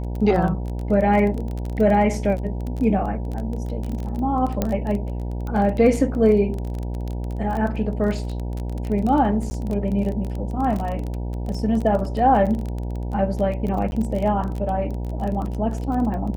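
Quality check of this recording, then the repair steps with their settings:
mains buzz 60 Hz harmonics 16 −27 dBFS
surface crackle 21 per second −26 dBFS
0:04.62: click −8 dBFS
0:09.50–0:09.51: drop-out 10 ms
0:13.91–0:13.92: drop-out 11 ms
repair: click removal
hum removal 60 Hz, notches 16
repair the gap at 0:09.50, 10 ms
repair the gap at 0:13.91, 11 ms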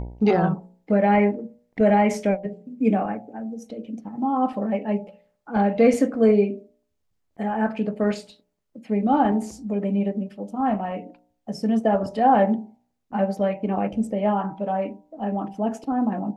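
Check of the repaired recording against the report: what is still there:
none of them is left

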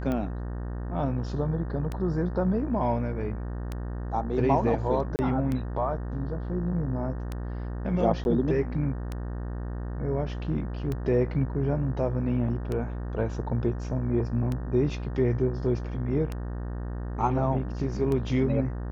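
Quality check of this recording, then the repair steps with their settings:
mains buzz 60 Hz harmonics 31 −33 dBFS
scratch tick 33 1/3 rpm −19 dBFS
0:05.16–0:05.19: drop-out 29 ms
0:08.24–0:08.25: drop-out 11 ms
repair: click removal
hum removal 60 Hz, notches 31
repair the gap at 0:05.16, 29 ms
repair the gap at 0:08.24, 11 ms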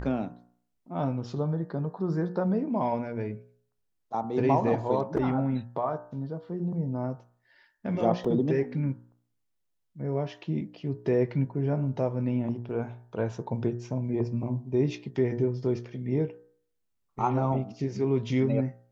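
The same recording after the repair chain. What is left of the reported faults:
none of them is left

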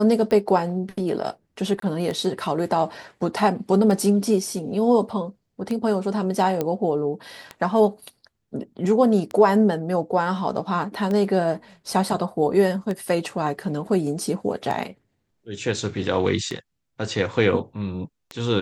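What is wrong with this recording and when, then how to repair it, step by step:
scratch tick 33 1/3 rpm −16 dBFS
0:01.80–0:01.82: drop-out 23 ms
0:06.61: click −11 dBFS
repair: click removal
repair the gap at 0:01.80, 23 ms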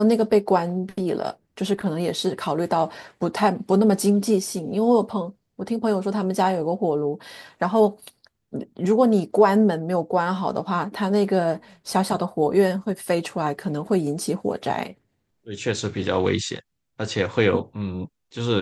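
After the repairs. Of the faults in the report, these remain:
none of them is left

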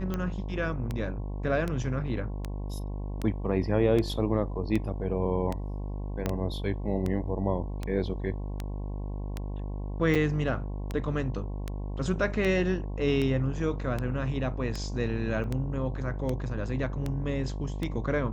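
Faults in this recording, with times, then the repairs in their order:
mains buzz 50 Hz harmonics 22 −34 dBFS
scratch tick 78 rpm −18 dBFS
0:06.26: click −15 dBFS
0:10.15–0:10.16: drop-out 5.8 ms
0:15.44: drop-out 2 ms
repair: click removal
hum removal 50 Hz, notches 22
repair the gap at 0:10.15, 5.8 ms
repair the gap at 0:15.44, 2 ms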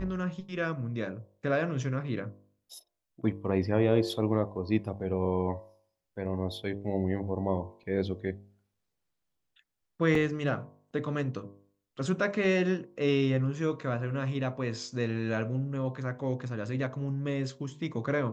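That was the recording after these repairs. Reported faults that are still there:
0:06.26: click

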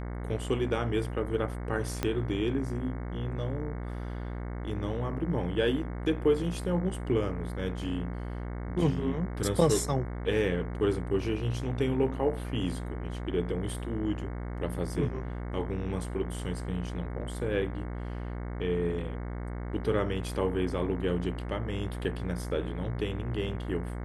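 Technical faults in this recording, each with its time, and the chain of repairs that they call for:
mains buzz 60 Hz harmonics 37 −36 dBFS
0:02.03: click −14 dBFS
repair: click removal
hum removal 60 Hz, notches 37

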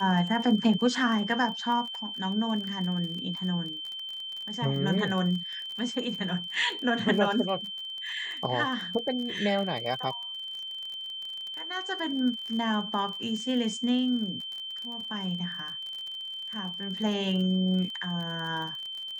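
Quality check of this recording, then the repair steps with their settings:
surface crackle 40 per second −35 dBFS
whistle 3,100 Hz −35 dBFS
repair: click removal
notch filter 3,100 Hz, Q 30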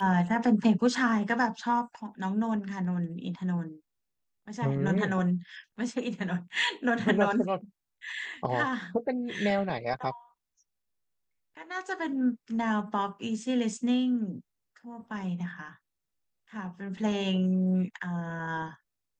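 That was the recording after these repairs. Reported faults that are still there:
none of them is left

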